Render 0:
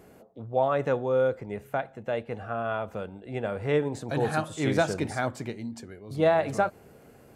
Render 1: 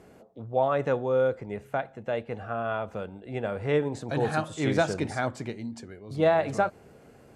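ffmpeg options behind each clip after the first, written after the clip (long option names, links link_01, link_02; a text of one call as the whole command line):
ffmpeg -i in.wav -af "lowpass=9000" out.wav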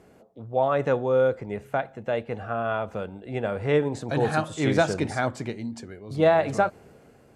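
ffmpeg -i in.wav -af "dynaudnorm=framelen=160:gausssize=7:maxgain=4.5dB,volume=-1.5dB" out.wav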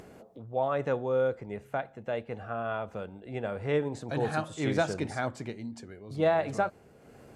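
ffmpeg -i in.wav -af "acompressor=mode=upward:threshold=-35dB:ratio=2.5,volume=-6dB" out.wav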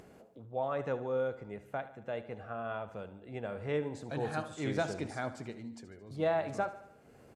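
ffmpeg -i in.wav -af "aecho=1:1:74|148|222|296|370:0.188|0.104|0.057|0.0313|0.0172,volume=-5.5dB" out.wav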